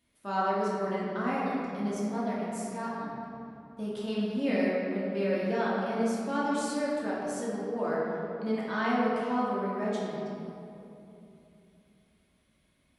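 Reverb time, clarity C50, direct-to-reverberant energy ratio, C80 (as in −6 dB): 2.9 s, −2.0 dB, −7.5 dB, −0.5 dB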